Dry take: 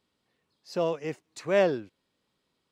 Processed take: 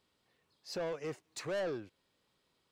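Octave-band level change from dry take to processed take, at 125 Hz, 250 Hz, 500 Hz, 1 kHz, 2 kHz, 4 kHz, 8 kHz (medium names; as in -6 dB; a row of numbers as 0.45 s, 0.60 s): -9.5 dB, -10.5 dB, -11.0 dB, -11.5 dB, -9.5 dB, -4.5 dB, -1.0 dB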